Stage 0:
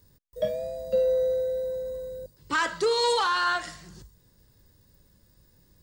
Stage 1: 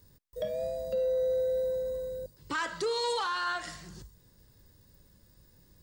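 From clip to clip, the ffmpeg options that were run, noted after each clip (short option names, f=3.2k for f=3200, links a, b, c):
-af "alimiter=limit=-24dB:level=0:latency=1:release=192"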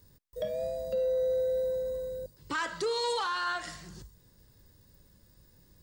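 -af anull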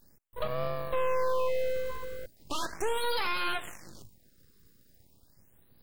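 -af "aeval=exprs='0.0668*(cos(1*acos(clip(val(0)/0.0668,-1,1)))-cos(1*PI/2))+0.0211*(cos(4*acos(clip(val(0)/0.0668,-1,1)))-cos(4*PI/2))':c=same,aeval=exprs='abs(val(0))':c=same,afftfilt=real='re*(1-between(b*sr/1024,720*pow(7500/720,0.5+0.5*sin(2*PI*0.38*pts/sr))/1.41,720*pow(7500/720,0.5+0.5*sin(2*PI*0.38*pts/sr))*1.41))':imag='im*(1-between(b*sr/1024,720*pow(7500/720,0.5+0.5*sin(2*PI*0.38*pts/sr))/1.41,720*pow(7500/720,0.5+0.5*sin(2*PI*0.38*pts/sr))*1.41))':win_size=1024:overlap=0.75"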